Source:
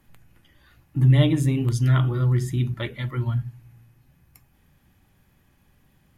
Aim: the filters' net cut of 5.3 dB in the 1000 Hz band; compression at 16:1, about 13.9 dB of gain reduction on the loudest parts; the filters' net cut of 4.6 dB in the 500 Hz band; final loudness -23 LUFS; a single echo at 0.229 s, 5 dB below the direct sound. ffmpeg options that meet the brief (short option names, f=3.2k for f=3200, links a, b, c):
-af "equalizer=f=500:t=o:g=-5,equalizer=f=1k:t=o:g=-6.5,acompressor=threshold=-26dB:ratio=16,aecho=1:1:229:0.562,volume=8dB"